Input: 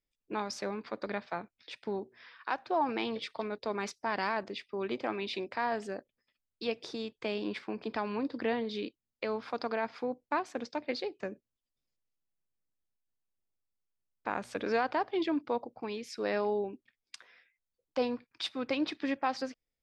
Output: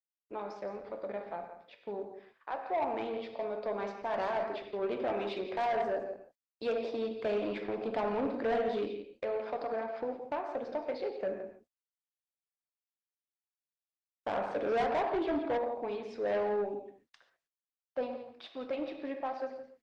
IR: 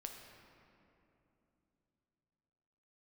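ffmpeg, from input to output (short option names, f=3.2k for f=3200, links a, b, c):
-filter_complex "[0:a]asettb=1/sr,asplit=3[a][b][c];[a]atrim=end=8.834[d];[b]atrim=start=8.83:end=11.27,asetpts=PTS-STARTPTS,afade=t=in:d=0.004:c=qsin,afade=t=out:st=2.436:d=0.004:c=qsin,acompressor=threshold=-37dB:ratio=4[e];[c]atrim=start=11.266[f];[d][e]acrossfade=d=0.004:c1=hsin:c2=qsin[g];[g][f]acrossfade=d=0.004:c1=qsin:c2=hsin,aecho=1:1:169:0.266,agate=range=-44dB:threshold=-52dB:ratio=16:detection=peak,dynaudnorm=f=410:g=21:m=9dB,lowpass=3.4k,equalizer=f=600:t=o:w=0.94:g=10.5[h];[1:a]atrim=start_sample=2205,atrim=end_sample=6615[i];[h][i]afir=irnorm=-1:irlink=0,asoftclip=type=tanh:threshold=-22dB,volume=-4dB" -ar 48000 -c:a libopus -b:a 20k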